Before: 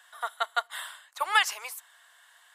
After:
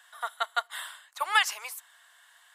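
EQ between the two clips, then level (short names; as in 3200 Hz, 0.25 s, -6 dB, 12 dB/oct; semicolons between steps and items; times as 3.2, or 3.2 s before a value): low shelf 330 Hz -9.5 dB; 0.0 dB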